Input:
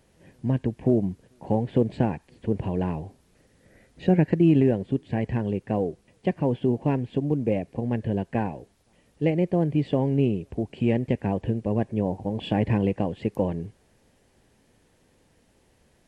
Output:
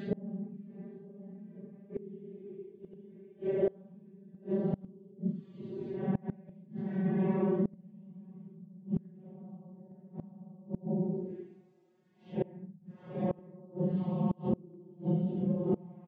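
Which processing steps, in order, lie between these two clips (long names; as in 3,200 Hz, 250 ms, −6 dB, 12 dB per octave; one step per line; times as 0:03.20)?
vocoder with a gliding carrier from A#3, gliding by −11 semitones
high-shelf EQ 2,300 Hz −4 dB
loudspeakers that aren't time-aligned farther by 46 metres −10 dB, 57 metres −6 dB
extreme stretch with random phases 5.6×, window 0.05 s, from 0:04.06
gate with flip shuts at −19 dBFS, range −28 dB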